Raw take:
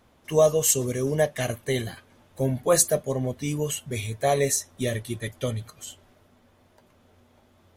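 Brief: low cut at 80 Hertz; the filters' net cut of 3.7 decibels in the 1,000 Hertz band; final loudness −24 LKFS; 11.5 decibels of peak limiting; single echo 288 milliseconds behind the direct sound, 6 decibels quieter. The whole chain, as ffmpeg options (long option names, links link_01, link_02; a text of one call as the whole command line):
ffmpeg -i in.wav -af "highpass=80,equalizer=frequency=1000:width_type=o:gain=-6,alimiter=limit=-16dB:level=0:latency=1,aecho=1:1:288:0.501,volume=4dB" out.wav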